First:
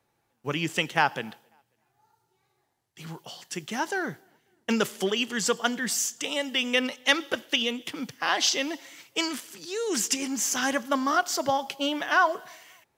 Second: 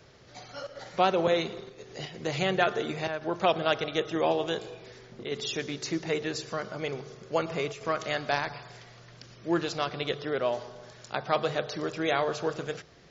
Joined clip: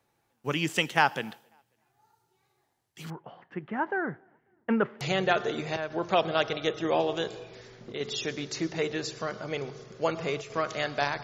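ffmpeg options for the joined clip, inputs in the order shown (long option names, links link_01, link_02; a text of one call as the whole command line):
ffmpeg -i cue0.wav -i cue1.wav -filter_complex "[0:a]asettb=1/sr,asplit=3[link_01][link_02][link_03];[link_01]atrim=end=3.104[link_04];[link_02]atrim=start=3.1:end=5.01,asetpts=PTS-STARTPTS,afade=type=in:duration=0.004:curve=qsin,afade=type=out:start_time=1.906:duration=0.004:curve=qsin,lowpass=frequency=1800:width=0.5412,lowpass=frequency=1800:width=1.3066[link_05];[link_03]atrim=start=5.006[link_06];[link_04][link_05]acrossfade=duration=0.004:curve1=hsin:curve2=qsin[link_07];[link_07][link_06]acrossfade=duration=0.004:curve1=qsin:curve2=hsin,apad=whole_dur=11.23,atrim=end=11.23,atrim=end=5.012[link_08];[1:a]atrim=start=2.318:end=8.54[link_09];[link_08][link_09]acrossfade=duration=0.004:curve1=hsin:curve2=hsin" out.wav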